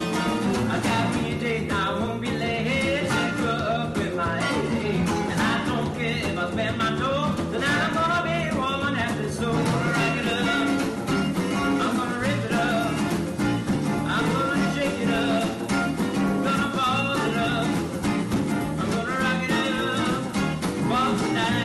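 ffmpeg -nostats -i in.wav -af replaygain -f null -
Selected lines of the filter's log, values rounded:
track_gain = +6.8 dB
track_peak = 0.092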